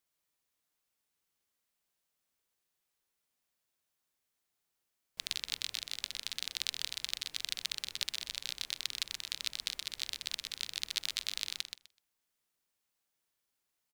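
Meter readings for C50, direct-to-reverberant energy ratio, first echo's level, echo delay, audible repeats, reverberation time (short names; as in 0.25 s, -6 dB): none, none, -7.0 dB, 0.126 s, 2, none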